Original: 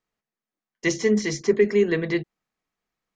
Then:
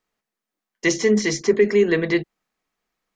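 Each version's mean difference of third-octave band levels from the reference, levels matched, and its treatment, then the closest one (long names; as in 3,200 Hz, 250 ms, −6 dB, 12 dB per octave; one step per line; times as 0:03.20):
1.5 dB: parametric band 94 Hz −9 dB 1.3 octaves
in parallel at +0.5 dB: brickwall limiter −15.5 dBFS, peak gain reduction 7 dB
on the sum: level −1 dB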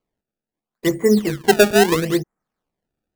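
8.5 dB: low-pass filter 1,700 Hz 24 dB per octave
sample-and-hold swept by an LFO 24×, swing 160% 0.75 Hz
level +5.5 dB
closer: first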